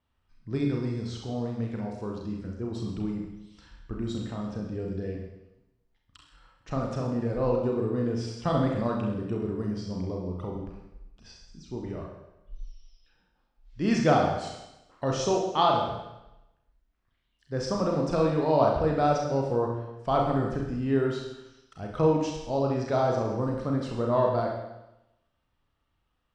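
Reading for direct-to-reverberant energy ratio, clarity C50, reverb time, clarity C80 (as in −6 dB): −1.0 dB, 3.0 dB, 0.90 s, 5.5 dB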